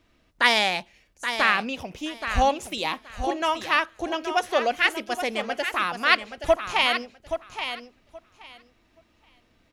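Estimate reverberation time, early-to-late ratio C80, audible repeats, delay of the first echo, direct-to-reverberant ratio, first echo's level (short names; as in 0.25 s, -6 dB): none, none, 2, 0.825 s, none, -9.0 dB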